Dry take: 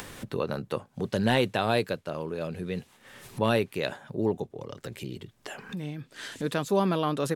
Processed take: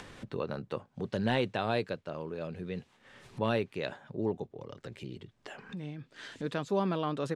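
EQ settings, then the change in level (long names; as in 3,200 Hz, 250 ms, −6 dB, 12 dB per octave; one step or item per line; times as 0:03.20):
high-frequency loss of the air 81 metres
−5.0 dB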